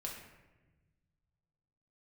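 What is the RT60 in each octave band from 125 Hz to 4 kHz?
2.7, 1.9, 1.3, 1.0, 1.1, 0.70 seconds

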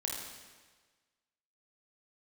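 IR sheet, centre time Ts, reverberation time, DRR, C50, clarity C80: 71 ms, 1.4 s, −1.5 dB, 1.0 dB, 3.5 dB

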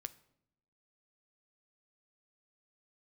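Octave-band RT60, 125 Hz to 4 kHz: 1.0, 1.0, 0.85, 0.65, 0.60, 0.55 seconds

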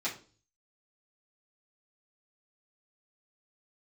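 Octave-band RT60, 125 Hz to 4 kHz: 0.70, 0.50, 0.45, 0.35, 0.30, 0.35 seconds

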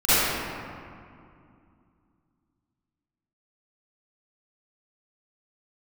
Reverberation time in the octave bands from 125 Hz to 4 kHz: 3.2, 3.3, 2.4, 2.4, 1.9, 1.2 seconds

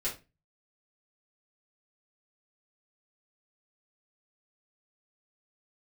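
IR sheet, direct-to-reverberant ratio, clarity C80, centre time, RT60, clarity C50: −8.0 dB, 17.5 dB, 21 ms, 0.25 s, 10.0 dB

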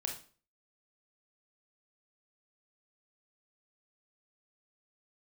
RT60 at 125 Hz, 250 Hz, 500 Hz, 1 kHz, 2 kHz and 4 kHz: 0.50, 0.45, 0.45, 0.40, 0.35, 0.35 seconds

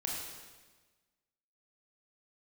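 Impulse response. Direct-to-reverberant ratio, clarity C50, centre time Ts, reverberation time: −3.0 dB, 0.5 dB, 78 ms, 1.3 s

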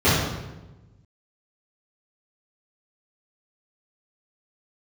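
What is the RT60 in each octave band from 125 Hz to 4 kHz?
1.7, 1.4, 1.2, 1.0, 0.90, 0.75 seconds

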